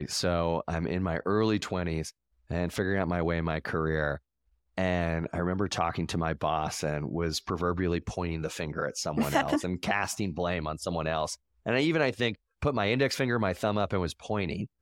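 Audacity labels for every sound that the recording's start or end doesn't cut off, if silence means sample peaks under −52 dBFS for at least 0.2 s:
2.500000	4.180000	sound
4.770000	11.360000	sound
11.660000	12.350000	sound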